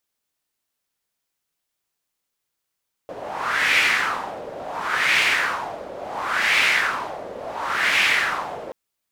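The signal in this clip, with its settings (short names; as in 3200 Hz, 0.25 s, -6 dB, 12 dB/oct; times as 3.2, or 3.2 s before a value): wind-like swept noise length 5.63 s, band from 550 Hz, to 2300 Hz, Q 3.2, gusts 4, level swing 16.5 dB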